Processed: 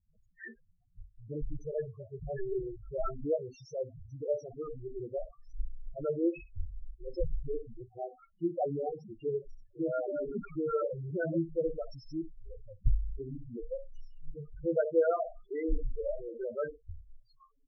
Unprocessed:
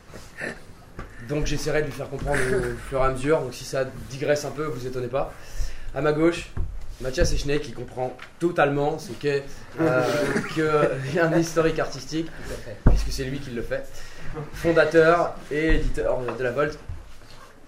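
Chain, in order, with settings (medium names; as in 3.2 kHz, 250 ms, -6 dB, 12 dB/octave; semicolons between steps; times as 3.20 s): 1.57–2.39 s: comb of notches 260 Hz; spectral noise reduction 14 dB; loudest bins only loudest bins 4; trim -8.5 dB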